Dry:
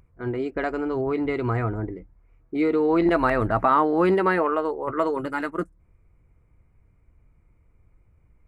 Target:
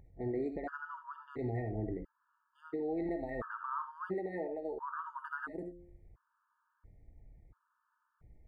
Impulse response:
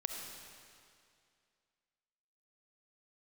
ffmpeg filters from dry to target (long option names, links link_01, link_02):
-filter_complex "[0:a]highshelf=frequency=2000:width_type=q:width=3:gain=-7,bandreject=frequency=174.8:width_type=h:width=4,bandreject=frequency=349.6:width_type=h:width=4,bandreject=frequency=524.4:width_type=h:width=4,acompressor=threshold=-29dB:ratio=16,alimiter=level_in=2dB:limit=-24dB:level=0:latency=1:release=316,volume=-2dB[link_01];[1:a]atrim=start_sample=2205,atrim=end_sample=4410[link_02];[link_01][link_02]afir=irnorm=-1:irlink=0,afftfilt=real='re*gt(sin(2*PI*0.73*pts/sr)*(1-2*mod(floor(b*sr/1024/900),2)),0)':imag='im*gt(sin(2*PI*0.73*pts/sr)*(1-2*mod(floor(b*sr/1024/900),2)),0)':win_size=1024:overlap=0.75"